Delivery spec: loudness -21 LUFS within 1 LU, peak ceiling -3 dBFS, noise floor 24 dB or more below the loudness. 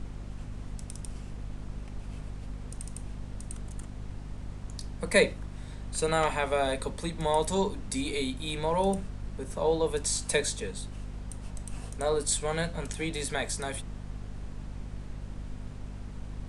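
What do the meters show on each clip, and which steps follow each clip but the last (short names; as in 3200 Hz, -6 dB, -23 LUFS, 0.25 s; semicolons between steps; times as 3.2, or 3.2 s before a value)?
hum 50 Hz; harmonics up to 250 Hz; hum level -38 dBFS; noise floor -43 dBFS; noise floor target -57 dBFS; loudness -32.5 LUFS; peak -8.0 dBFS; loudness target -21.0 LUFS
-> de-hum 50 Hz, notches 5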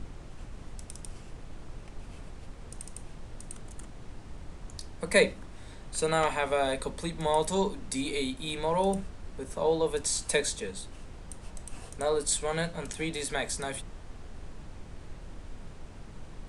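hum none; noise floor -46 dBFS; noise floor target -54 dBFS
-> noise print and reduce 8 dB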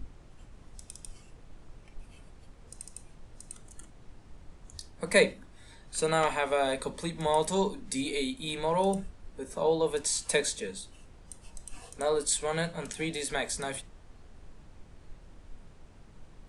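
noise floor -54 dBFS; loudness -30.0 LUFS; peak -8.0 dBFS; loudness target -21.0 LUFS
-> gain +9 dB; limiter -3 dBFS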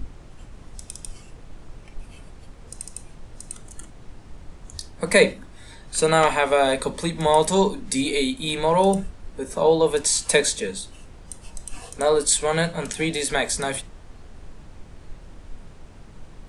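loudness -21.0 LUFS; peak -3.0 dBFS; noise floor -45 dBFS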